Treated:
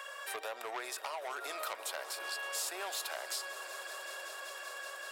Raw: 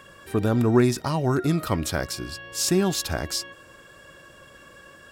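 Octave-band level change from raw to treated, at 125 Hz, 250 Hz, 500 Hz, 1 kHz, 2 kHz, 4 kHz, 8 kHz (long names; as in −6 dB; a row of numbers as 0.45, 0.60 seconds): below −40 dB, −35.5 dB, −17.5 dB, −8.5 dB, −4.5 dB, −9.0 dB, −9.5 dB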